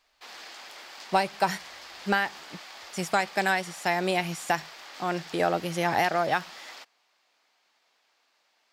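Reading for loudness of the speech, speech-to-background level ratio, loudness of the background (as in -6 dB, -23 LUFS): -28.0 LUFS, 15.0 dB, -43.0 LUFS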